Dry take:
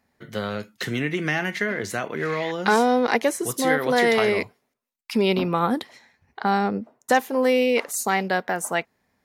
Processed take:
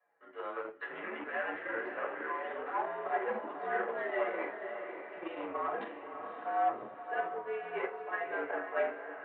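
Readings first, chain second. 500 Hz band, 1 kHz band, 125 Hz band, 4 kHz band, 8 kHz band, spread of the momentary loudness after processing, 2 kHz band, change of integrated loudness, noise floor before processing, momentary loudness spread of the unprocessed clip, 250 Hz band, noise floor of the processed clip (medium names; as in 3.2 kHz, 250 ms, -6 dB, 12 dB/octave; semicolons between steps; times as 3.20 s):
-13.5 dB, -10.5 dB, under -30 dB, -25.0 dB, under -40 dB, 9 LU, -12.5 dB, -14.0 dB, -75 dBFS, 10 LU, -21.5 dB, -50 dBFS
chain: reverse; compression 6:1, threshold -33 dBFS, peak gain reduction 18 dB; reverse; flange 0.35 Hz, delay 5.1 ms, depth 5.8 ms, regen +34%; simulated room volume 280 m³, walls furnished, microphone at 6.1 m; Chebyshev shaper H 5 -19 dB, 7 -17 dB, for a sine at -14 dBFS; three-band isolator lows -15 dB, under 520 Hz, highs -22 dB, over 2 kHz; mistuned SSB -75 Hz 390–3200 Hz; echo that smears into a reverb 565 ms, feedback 47%, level -7.5 dB; trim -2.5 dB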